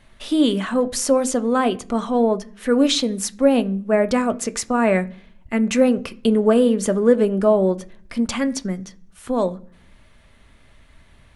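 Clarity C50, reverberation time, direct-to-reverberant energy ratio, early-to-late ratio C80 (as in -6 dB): 20.5 dB, 0.50 s, 10.0 dB, 25.5 dB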